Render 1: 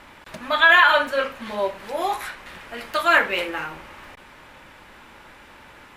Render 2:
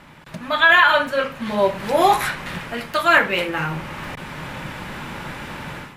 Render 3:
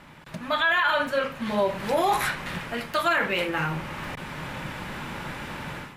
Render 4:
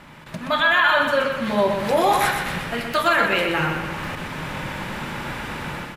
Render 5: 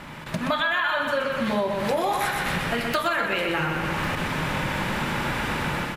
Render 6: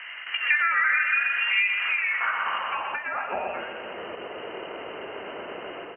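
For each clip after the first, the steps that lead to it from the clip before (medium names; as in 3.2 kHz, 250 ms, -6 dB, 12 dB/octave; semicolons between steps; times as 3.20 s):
peaking EQ 150 Hz +14 dB 0.92 oct; level rider gain up to 14 dB; trim -1 dB
peak limiter -11 dBFS, peak gain reduction 9 dB; trim -3 dB
feedback delay 124 ms, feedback 46%, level -6 dB; trim +4 dB
compression 6:1, threshold -27 dBFS, peak gain reduction 12.5 dB; trim +5 dB
frequency inversion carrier 3 kHz; band-pass sweep 1.9 kHz -> 440 Hz, 1.64–4.06 s; trim +5 dB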